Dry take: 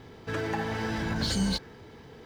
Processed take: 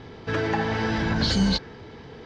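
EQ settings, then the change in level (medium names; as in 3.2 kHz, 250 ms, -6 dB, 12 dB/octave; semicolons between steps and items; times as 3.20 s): low-pass 5.8 kHz 24 dB/octave; +6.0 dB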